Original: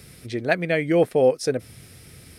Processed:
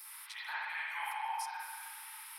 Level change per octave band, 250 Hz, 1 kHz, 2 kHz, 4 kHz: under -40 dB, -5.5 dB, -10.0 dB, -9.0 dB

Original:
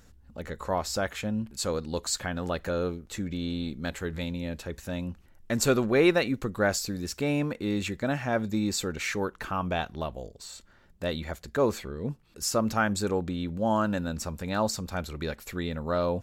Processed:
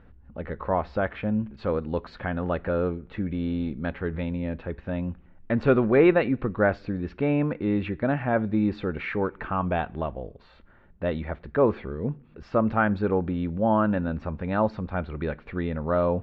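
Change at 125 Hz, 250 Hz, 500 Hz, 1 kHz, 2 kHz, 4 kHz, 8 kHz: +4.0 dB, +4.0 dB, +4.0 dB, +3.0 dB, +1.0 dB, -12.0 dB, under -35 dB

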